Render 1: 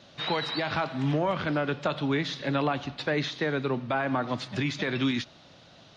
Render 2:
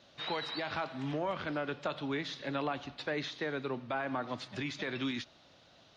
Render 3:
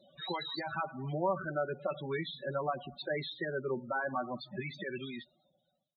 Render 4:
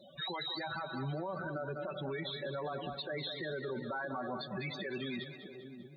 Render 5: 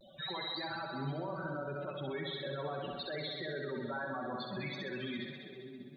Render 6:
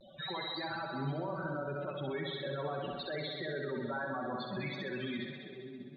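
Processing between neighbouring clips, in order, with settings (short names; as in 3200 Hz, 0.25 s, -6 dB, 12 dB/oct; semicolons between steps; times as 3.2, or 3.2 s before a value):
bell 150 Hz -5.5 dB 1.2 oct; gain -7 dB
ending faded out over 1.50 s; loudest bins only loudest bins 16; comb 5.3 ms, depth 85%
compressor 2:1, threshold -41 dBFS, peak gain reduction 8 dB; split-band echo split 410 Hz, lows 0.63 s, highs 0.198 s, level -10.5 dB; limiter -37 dBFS, peak gain reduction 10 dB; gain +6 dB
vibrato 0.36 Hz 30 cents; on a send: flutter echo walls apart 11 m, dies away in 0.79 s; on the sum: gain -2 dB
air absorption 100 m; gain +2 dB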